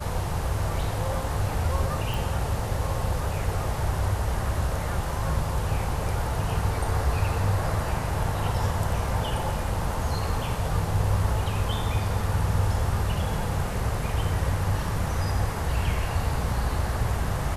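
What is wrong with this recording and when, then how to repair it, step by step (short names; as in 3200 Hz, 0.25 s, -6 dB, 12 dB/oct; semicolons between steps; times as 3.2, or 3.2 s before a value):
2.14 pop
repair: de-click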